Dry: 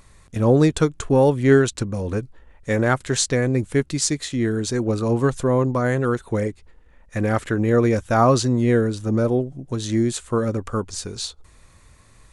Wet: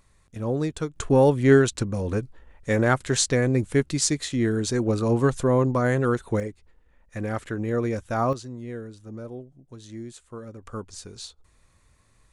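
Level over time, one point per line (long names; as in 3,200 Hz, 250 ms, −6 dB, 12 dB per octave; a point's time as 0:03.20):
−10.5 dB
from 0:00.96 −1.5 dB
from 0:06.40 −8 dB
from 0:08.33 −17.5 dB
from 0:10.63 −10 dB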